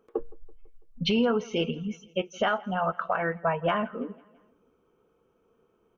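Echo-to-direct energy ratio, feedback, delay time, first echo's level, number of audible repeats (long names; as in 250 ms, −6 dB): −22.0 dB, 54%, 166 ms, −23.5 dB, 3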